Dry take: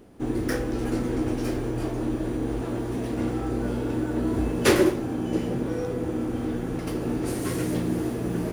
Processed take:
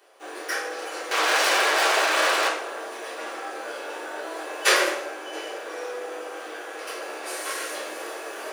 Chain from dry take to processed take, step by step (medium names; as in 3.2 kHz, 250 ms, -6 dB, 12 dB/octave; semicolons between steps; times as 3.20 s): 1.11–2.48 s: overdrive pedal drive 44 dB, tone 5.1 kHz, clips at -15.5 dBFS; Bessel high-pass 870 Hz, order 6; reverberation RT60 1.0 s, pre-delay 3 ms, DRR -7 dB